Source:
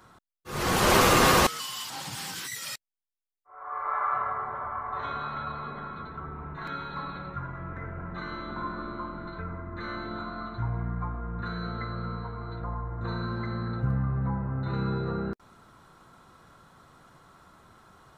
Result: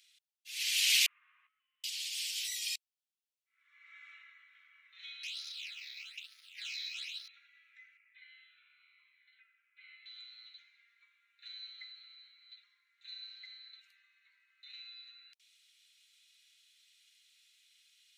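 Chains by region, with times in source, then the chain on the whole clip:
1.06–1.84 s: elliptic low-pass 1.1 kHz, stop band 80 dB + doubling 18 ms -10.5 dB
5.23–7.28 s: waveshaping leveller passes 3 + phase shifter stages 8, 1.1 Hz, lowest notch 370–2700 Hz
7.97–10.06 s: steep low-pass 2.8 kHz + Shepard-style phaser falling 1 Hz
whole clip: steep high-pass 2.4 kHz 48 dB/octave; treble shelf 6.3 kHz -9.5 dB; trim +4.5 dB

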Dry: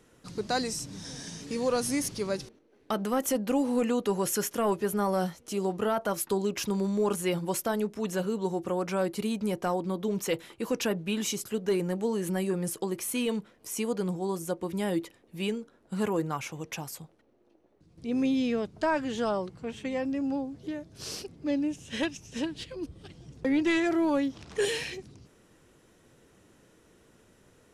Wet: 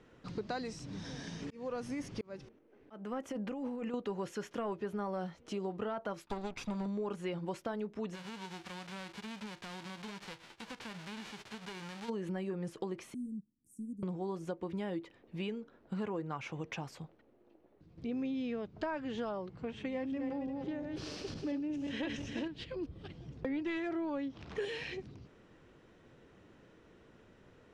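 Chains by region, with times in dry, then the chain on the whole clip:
1.42–3.94 s: peaking EQ 4.1 kHz -6 dB 0.51 oct + slow attack 786 ms + compressor with a negative ratio -33 dBFS
6.26–6.86 s: comb filter that takes the minimum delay 0.85 ms + treble shelf 4 kHz +6.5 dB + upward expansion, over -45 dBFS
8.14–12.08 s: formants flattened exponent 0.1 + compression 4:1, threshold -40 dBFS
13.14–14.03 s: companding laws mixed up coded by A + Chebyshev band-stop 270–8500 Hz, order 4 + bass shelf 360 Hz -9 dB
19.77–22.48 s: backward echo that repeats 175 ms, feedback 41%, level -6 dB + decay stretcher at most 53 dB/s
whole clip: compression 4:1, threshold -36 dBFS; low-pass 3.4 kHz 12 dB/octave

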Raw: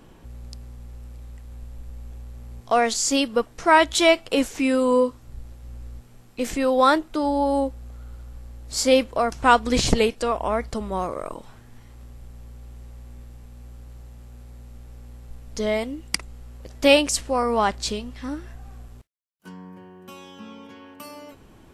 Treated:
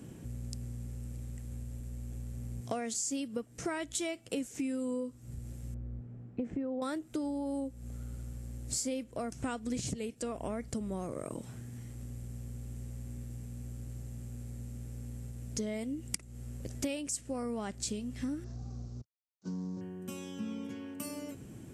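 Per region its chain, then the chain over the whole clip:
5.74–6.82 s: low-pass 1.2 kHz + compression 2.5:1, threshold -22 dBFS
18.44–19.81 s: CVSD coder 32 kbps + high-order bell 2.3 kHz -13.5 dB 1.3 oct
whole clip: graphic EQ 125/250/1000/4000/8000 Hz +8/+5/-10/-6/+9 dB; compression 12:1, threshold -31 dBFS; high-pass 64 Hz; trim -1.5 dB

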